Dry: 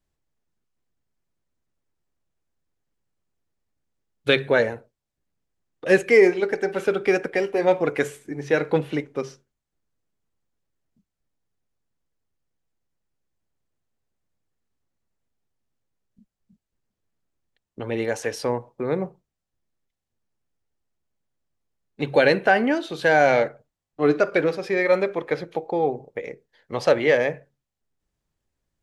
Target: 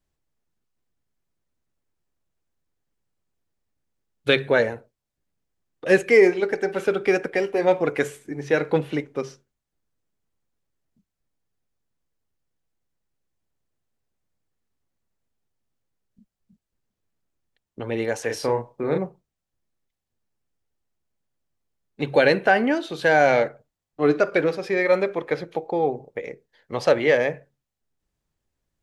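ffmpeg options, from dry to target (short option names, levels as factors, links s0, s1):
-filter_complex "[0:a]asettb=1/sr,asplit=3[s0][s1][s2];[s0]atrim=end=18.264[s3];[s1]atrim=start=18.26:end=18.98,asetpts=PTS-STARTPTS,afade=t=in:d=0.004:c=qsin,afade=t=out:st=0.716:d=0.004:c=qsin,asplit=2[s4][s5];[s5]adelay=35,volume=0.596[s6];[s4][s6]amix=inputs=2:normalize=0,atrim=end_sample=31752[s7];[s2]atrim=start=18.976[s8];[s3][s7]acrossfade=d=0.004:c1=hsin:c2=qsin[s9];[s9][s8]acrossfade=d=0.004:c1=qsin:c2=hsin"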